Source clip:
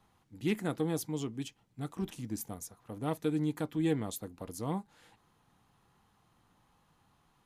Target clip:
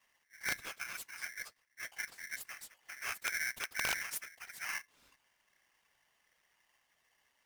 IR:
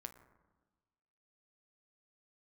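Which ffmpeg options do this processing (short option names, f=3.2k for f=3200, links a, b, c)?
-filter_complex "[0:a]asettb=1/sr,asplit=3[a][b][c];[a]atrim=end=0.614[d];[b]atrim=start=0.61:end=1.22,asetpts=PTS-STARTPTS,afade=t=in:d=0.004:c=qsin,afade=t=out:st=0.606:d=0.004:c=qsin,highpass=f=580:p=1[e];[c]atrim=start=1.216[f];[d][e]acrossfade=d=0.004:c1=hsin:c2=qsin[g];[g][f]acrossfade=d=0.004:c1=qsin:c2=hsin,asettb=1/sr,asplit=3[h][i][j];[h]atrim=end=2.974[k];[i]atrim=start=2.97:end=4.47,asetpts=PTS-STARTPTS,afade=t=in:d=0.004:c=qsin,afade=t=out:st=1.496:d=0.004:c=qsin,highshelf=f=6.5k:g=10.5[l];[j]atrim=start=4.466[m];[k][l]acrossfade=d=0.004:c1=hsin:c2=qsin[n];[n][m]acrossfade=d=0.004:c1=qsin:c2=hsin,afftfilt=real='hypot(re,im)*cos(2*PI*random(0))':imag='hypot(re,im)*sin(2*PI*random(1))':win_size=512:overlap=0.75,aeval=exprs='(mod(20*val(0)+1,2)-1)/20':c=same,aeval=exprs='val(0)*sgn(sin(2*PI*1900*n/s))':c=same"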